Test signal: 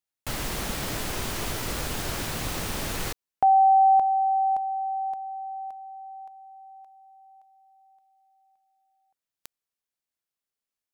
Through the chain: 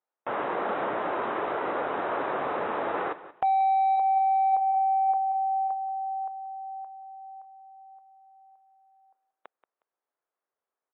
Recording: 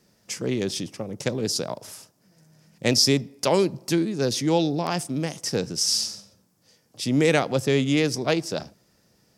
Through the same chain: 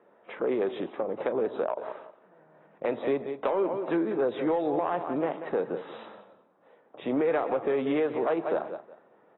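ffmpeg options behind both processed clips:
-filter_complex "[0:a]asuperpass=centerf=740:order=4:qfactor=0.82,aecho=1:1:181|362:0.141|0.0325,asplit=2[a][b];[b]asoftclip=type=tanh:threshold=-22.5dB,volume=-6.5dB[c];[a][c]amix=inputs=2:normalize=0,acompressor=threshold=-27dB:ratio=20:attack=0.73:release=211:knee=6:detection=peak,volume=6.5dB" -ar 22050 -c:a aac -b:a 16k

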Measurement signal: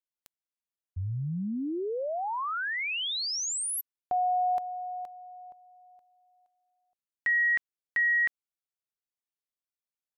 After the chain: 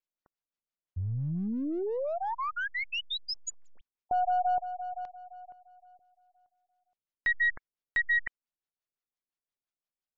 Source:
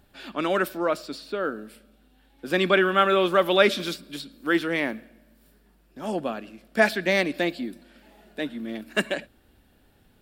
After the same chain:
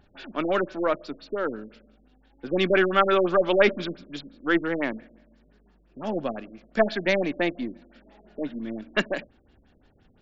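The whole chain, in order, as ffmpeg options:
-af "aeval=exprs='if(lt(val(0),0),0.708*val(0),val(0))':c=same,afftfilt=real='re*lt(b*sr/1024,610*pow(7500/610,0.5+0.5*sin(2*PI*5.8*pts/sr)))':imag='im*lt(b*sr/1024,610*pow(7500/610,0.5+0.5*sin(2*PI*5.8*pts/sr)))':win_size=1024:overlap=0.75,volume=1.5dB"

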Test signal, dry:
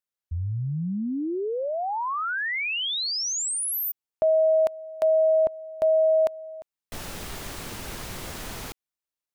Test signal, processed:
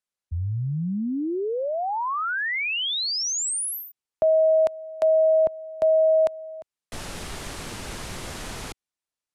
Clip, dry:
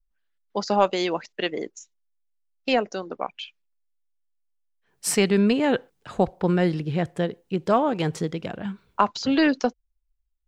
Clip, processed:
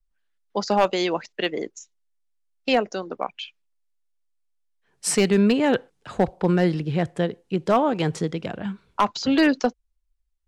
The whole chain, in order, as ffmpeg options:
-filter_complex "[0:a]lowpass=f=11k:w=0.5412,lowpass=f=11k:w=1.3066,acrossover=split=110[a][b];[b]volume=12dB,asoftclip=hard,volume=-12dB[c];[a][c]amix=inputs=2:normalize=0,volume=1.5dB"

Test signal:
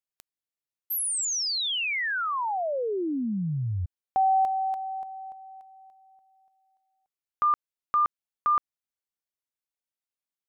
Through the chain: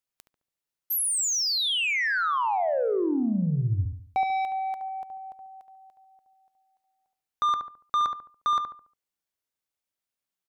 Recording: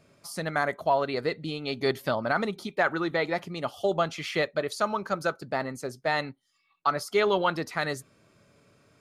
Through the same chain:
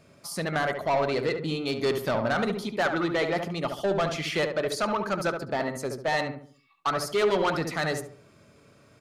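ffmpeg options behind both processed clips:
-filter_complex "[0:a]asoftclip=type=tanh:threshold=-24dB,asplit=2[a][b];[b]adelay=71,lowpass=f=1.5k:p=1,volume=-5dB,asplit=2[c][d];[d]adelay=71,lowpass=f=1.5k:p=1,volume=0.41,asplit=2[e][f];[f]adelay=71,lowpass=f=1.5k:p=1,volume=0.41,asplit=2[g][h];[h]adelay=71,lowpass=f=1.5k:p=1,volume=0.41,asplit=2[i][j];[j]adelay=71,lowpass=f=1.5k:p=1,volume=0.41[k];[c][e][g][i][k]amix=inputs=5:normalize=0[l];[a][l]amix=inputs=2:normalize=0,volume=3.5dB"

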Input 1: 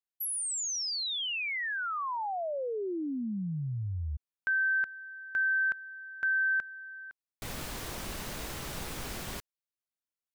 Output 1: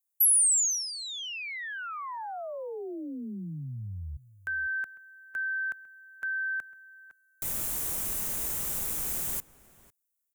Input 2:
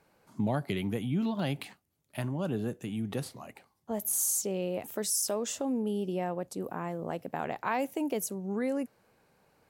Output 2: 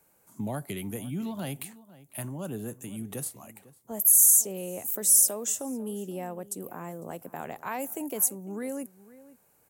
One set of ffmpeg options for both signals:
-filter_complex "[0:a]acrossover=split=200|1700[a][b][c];[c]aexciter=amount=4.3:drive=7.9:freq=6.5k[d];[a][b][d]amix=inputs=3:normalize=0,asplit=2[e][f];[f]adelay=501.5,volume=-18dB,highshelf=f=4k:g=-11.3[g];[e][g]amix=inputs=2:normalize=0,volume=-3.5dB"

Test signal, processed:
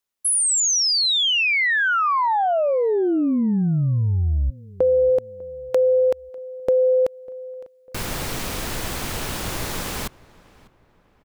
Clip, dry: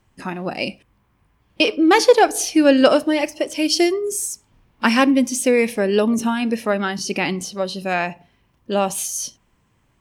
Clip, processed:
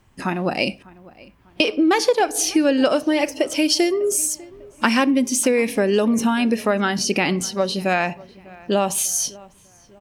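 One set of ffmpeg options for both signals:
-filter_complex "[0:a]acompressor=threshold=-20dB:ratio=4,asplit=2[a][b];[b]adelay=598,lowpass=f=2.4k:p=1,volume=-22dB,asplit=2[c][d];[d]adelay=598,lowpass=f=2.4k:p=1,volume=0.43,asplit=2[e][f];[f]adelay=598,lowpass=f=2.4k:p=1,volume=0.43[g];[c][e][g]amix=inputs=3:normalize=0[h];[a][h]amix=inputs=2:normalize=0,volume=4.5dB"

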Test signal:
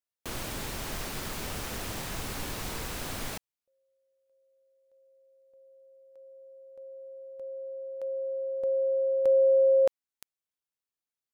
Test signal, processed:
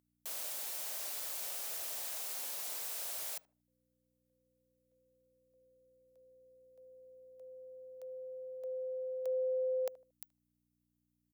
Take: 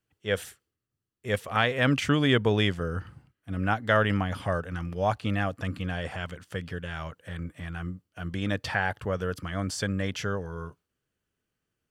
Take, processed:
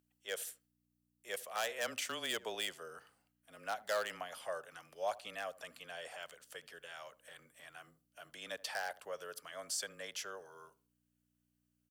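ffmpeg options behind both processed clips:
-filter_complex "[0:a]highpass=f=120:w=0.5412,highpass=f=120:w=1.3066,afreqshift=-21,equalizer=f=610:t=o:w=1.2:g=13.5,acrossover=split=210|1100[a][b][c];[c]asoftclip=type=hard:threshold=-22dB[d];[a][b][d]amix=inputs=3:normalize=0,asplit=2[e][f];[f]adelay=76,lowpass=f=970:p=1,volume=-17.5dB,asplit=2[g][h];[h]adelay=76,lowpass=f=970:p=1,volume=0.31,asplit=2[i][j];[j]adelay=76,lowpass=f=970:p=1,volume=0.31[k];[e][g][i][k]amix=inputs=4:normalize=0,aeval=exprs='val(0)+0.00708*(sin(2*PI*60*n/s)+sin(2*PI*2*60*n/s)/2+sin(2*PI*3*60*n/s)/3+sin(2*PI*4*60*n/s)/4+sin(2*PI*5*60*n/s)/5)':c=same,aderivative,volume=-1.5dB"

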